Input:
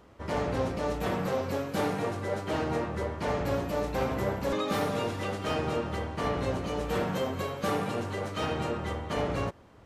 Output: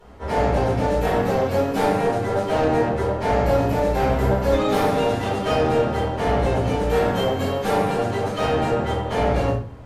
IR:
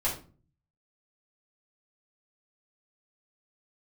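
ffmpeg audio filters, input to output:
-filter_complex "[0:a]asoftclip=type=tanh:threshold=0.0944[s0];[1:a]atrim=start_sample=2205,asetrate=34839,aresample=44100[s1];[s0][s1]afir=irnorm=-1:irlink=0"

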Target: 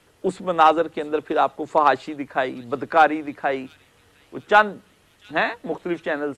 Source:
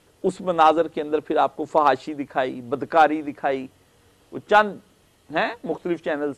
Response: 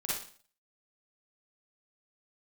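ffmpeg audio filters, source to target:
-filter_complex "[0:a]acrossover=split=290|570|2300[s0][s1][s2][s3];[s2]crystalizer=i=6.5:c=0[s4];[s3]aecho=1:1:701|1402|2103|2804:0.178|0.0854|0.041|0.0197[s5];[s0][s1][s4][s5]amix=inputs=4:normalize=0,volume=0.891"

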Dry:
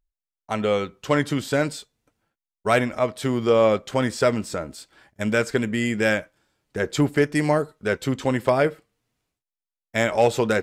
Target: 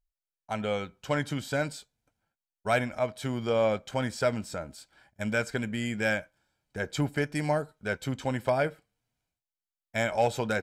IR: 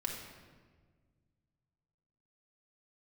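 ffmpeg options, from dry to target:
-af "aecho=1:1:1.3:0.42,volume=0.422"

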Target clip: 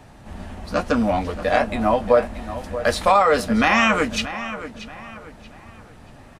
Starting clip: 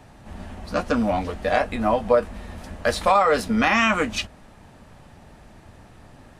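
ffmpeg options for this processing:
-filter_complex "[0:a]asplit=2[s0][s1];[s1]adelay=631,lowpass=f=4500:p=1,volume=0.237,asplit=2[s2][s3];[s3]adelay=631,lowpass=f=4500:p=1,volume=0.37,asplit=2[s4][s5];[s5]adelay=631,lowpass=f=4500:p=1,volume=0.37,asplit=2[s6][s7];[s7]adelay=631,lowpass=f=4500:p=1,volume=0.37[s8];[s0][s2][s4][s6][s8]amix=inputs=5:normalize=0,volume=1.26"

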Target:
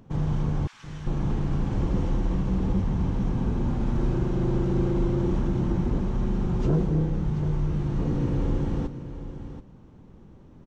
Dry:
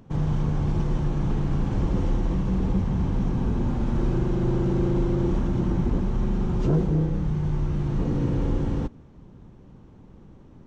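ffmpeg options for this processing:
-filter_complex "[0:a]asettb=1/sr,asplit=3[s0][s1][s2];[s0]atrim=end=0.674[s3];[s1]atrim=start=0.67:end=1.07,asetpts=PTS-STARTPTS,afade=t=in:d=0.004:c=qsin,afade=t=out:st=0.396:d=0.004:c=qsin,highpass=f=1400:w=0.5412,highpass=f=1400:w=1.3066[s4];[s2]atrim=start=1.066[s5];[s3][s4]acrossfade=d=0.004:c1=hsin:c2=qsin[s6];[s6][s5]acrossfade=d=0.004:c1=qsin:c2=hsin,aecho=1:1:731:0.266,volume=0.841"

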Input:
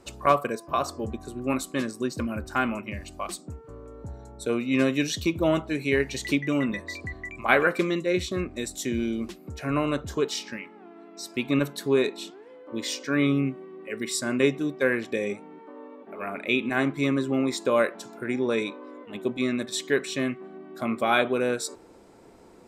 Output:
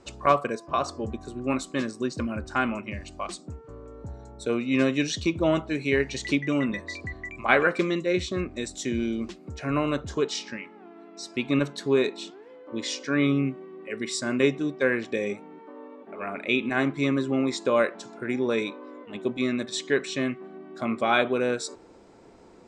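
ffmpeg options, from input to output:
-af "lowpass=f=7700:w=0.5412,lowpass=f=7700:w=1.3066"

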